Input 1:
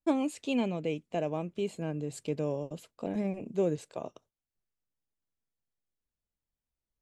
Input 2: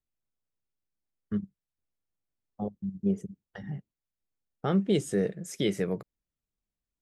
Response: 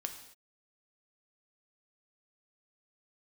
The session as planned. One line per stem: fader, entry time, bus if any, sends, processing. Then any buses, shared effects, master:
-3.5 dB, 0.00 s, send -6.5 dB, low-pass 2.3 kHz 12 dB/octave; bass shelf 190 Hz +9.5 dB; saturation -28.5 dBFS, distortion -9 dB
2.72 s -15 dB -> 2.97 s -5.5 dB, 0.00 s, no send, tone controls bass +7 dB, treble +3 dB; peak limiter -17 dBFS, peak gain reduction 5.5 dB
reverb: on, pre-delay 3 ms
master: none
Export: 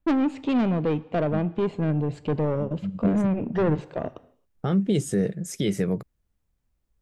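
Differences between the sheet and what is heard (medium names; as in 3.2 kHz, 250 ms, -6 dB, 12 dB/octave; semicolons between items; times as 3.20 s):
stem 1 -3.5 dB -> +7.0 dB; stem 2 -15.0 dB -> -7.0 dB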